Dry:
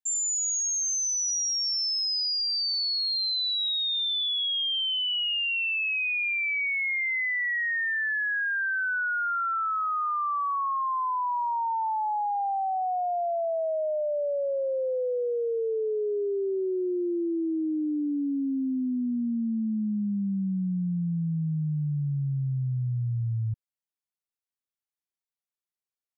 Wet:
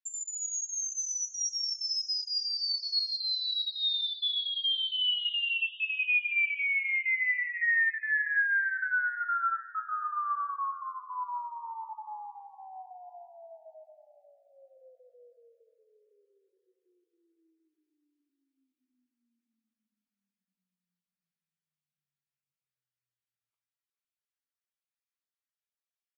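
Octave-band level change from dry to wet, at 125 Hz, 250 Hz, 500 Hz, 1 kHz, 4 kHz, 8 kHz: under -40 dB, under -40 dB, -28.5 dB, -8.5 dB, -3.5 dB, no reading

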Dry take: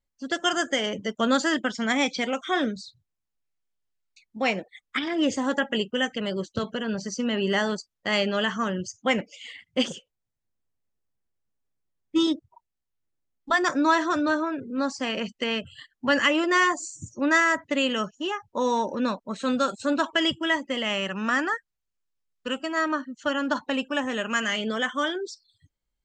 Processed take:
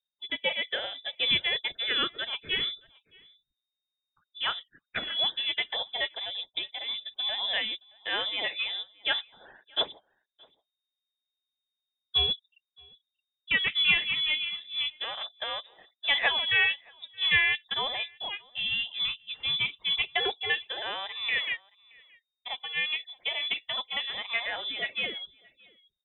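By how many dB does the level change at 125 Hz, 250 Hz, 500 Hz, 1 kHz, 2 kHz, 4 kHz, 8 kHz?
-9.5 dB, -25.0 dB, -14.0 dB, -11.5 dB, -2.0 dB, +4.5 dB, under -40 dB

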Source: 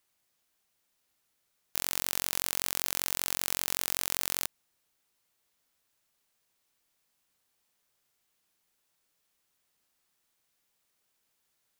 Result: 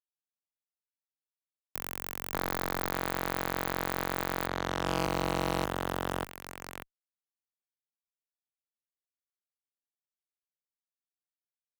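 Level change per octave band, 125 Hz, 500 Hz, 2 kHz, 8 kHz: +14.5 dB, +14.0 dB, +4.5 dB, -11.0 dB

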